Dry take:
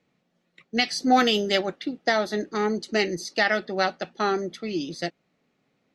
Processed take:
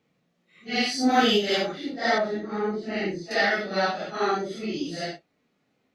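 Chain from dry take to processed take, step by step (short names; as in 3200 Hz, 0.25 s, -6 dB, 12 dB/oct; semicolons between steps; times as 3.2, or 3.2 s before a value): phase scrambler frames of 0.2 s; 2.18–3.31 tape spacing loss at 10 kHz 25 dB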